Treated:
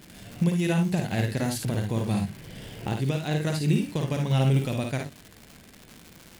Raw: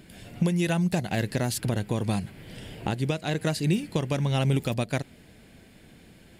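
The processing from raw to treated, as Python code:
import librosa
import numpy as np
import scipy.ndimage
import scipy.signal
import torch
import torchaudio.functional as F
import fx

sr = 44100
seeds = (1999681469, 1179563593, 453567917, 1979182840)

y = fx.hpss(x, sr, part='percussive', gain_db=-4)
y = fx.room_early_taps(y, sr, ms=(53, 73), db=(-4.5, -9.5))
y = fx.dmg_crackle(y, sr, seeds[0], per_s=290.0, level_db=-35.0)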